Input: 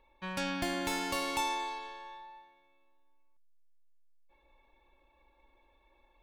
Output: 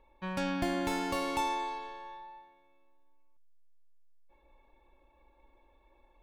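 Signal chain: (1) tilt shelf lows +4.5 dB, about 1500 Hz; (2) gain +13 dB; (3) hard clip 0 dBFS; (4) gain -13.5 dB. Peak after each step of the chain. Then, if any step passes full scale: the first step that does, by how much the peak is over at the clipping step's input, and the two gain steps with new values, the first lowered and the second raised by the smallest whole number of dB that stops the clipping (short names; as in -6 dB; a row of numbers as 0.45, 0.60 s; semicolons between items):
-18.0, -5.0, -5.0, -18.5 dBFS; no overload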